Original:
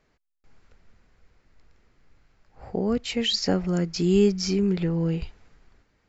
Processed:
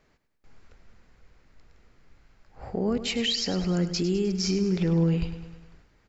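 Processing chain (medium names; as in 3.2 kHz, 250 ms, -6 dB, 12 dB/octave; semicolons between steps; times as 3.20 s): peak limiter -21.5 dBFS, peak gain reduction 11.5 dB; on a send: feedback delay 102 ms, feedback 57%, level -12 dB; on the sum: trim +2.5 dB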